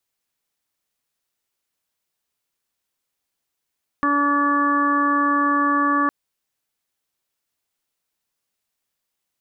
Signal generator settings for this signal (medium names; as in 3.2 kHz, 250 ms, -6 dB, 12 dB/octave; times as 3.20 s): steady additive tone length 2.06 s, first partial 287 Hz, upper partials -10/-12/3.5/-12/-4 dB, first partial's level -21.5 dB